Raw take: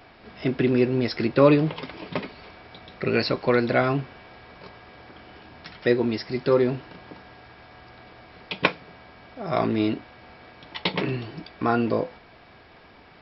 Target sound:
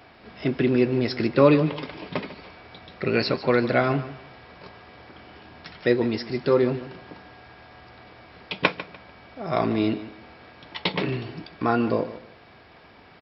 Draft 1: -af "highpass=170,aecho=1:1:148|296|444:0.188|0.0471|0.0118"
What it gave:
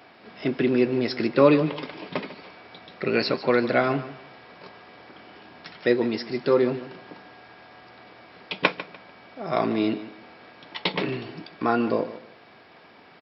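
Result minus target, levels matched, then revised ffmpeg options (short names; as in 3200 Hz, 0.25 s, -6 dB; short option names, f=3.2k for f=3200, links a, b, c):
125 Hz band -4.5 dB
-af "highpass=46,aecho=1:1:148|296|444:0.188|0.0471|0.0118"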